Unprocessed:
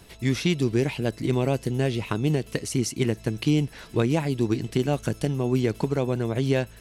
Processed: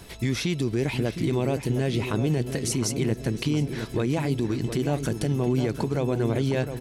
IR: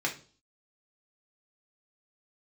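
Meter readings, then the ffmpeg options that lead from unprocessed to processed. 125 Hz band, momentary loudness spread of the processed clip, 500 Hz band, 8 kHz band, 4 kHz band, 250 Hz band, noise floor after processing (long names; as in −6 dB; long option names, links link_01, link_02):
−0.5 dB, 2 LU, −1.0 dB, +2.0 dB, −0.5 dB, −1.0 dB, −39 dBFS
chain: -filter_complex "[0:a]bandreject=frequency=2800:width=21,acompressor=threshold=-27dB:ratio=2,alimiter=limit=-21.5dB:level=0:latency=1:release=16,asplit=2[link_01][link_02];[link_02]adelay=712,lowpass=frequency=1900:poles=1,volume=-8dB,asplit=2[link_03][link_04];[link_04]adelay=712,lowpass=frequency=1900:poles=1,volume=0.49,asplit=2[link_05][link_06];[link_06]adelay=712,lowpass=frequency=1900:poles=1,volume=0.49,asplit=2[link_07][link_08];[link_08]adelay=712,lowpass=frequency=1900:poles=1,volume=0.49,asplit=2[link_09][link_10];[link_10]adelay=712,lowpass=frequency=1900:poles=1,volume=0.49,asplit=2[link_11][link_12];[link_12]adelay=712,lowpass=frequency=1900:poles=1,volume=0.49[link_13];[link_03][link_05][link_07][link_09][link_11][link_13]amix=inputs=6:normalize=0[link_14];[link_01][link_14]amix=inputs=2:normalize=0,volume=5dB"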